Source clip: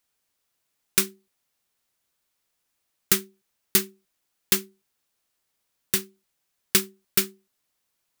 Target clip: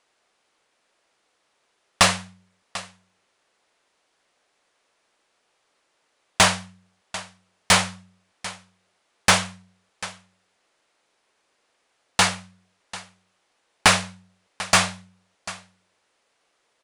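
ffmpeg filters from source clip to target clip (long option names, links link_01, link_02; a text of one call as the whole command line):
ffmpeg -i in.wav -filter_complex "[0:a]equalizer=frequency=960:width_type=o:width=1.5:gain=5.5,aecho=1:1:362:0.1,asetrate=21477,aresample=44100,asplit=2[link_01][link_02];[link_02]highpass=frequency=720:poles=1,volume=14dB,asoftclip=type=tanh:threshold=-2dB[link_03];[link_01][link_03]amix=inputs=2:normalize=0,lowpass=frequency=1900:poles=1,volume=-6dB,volume=3.5dB" out.wav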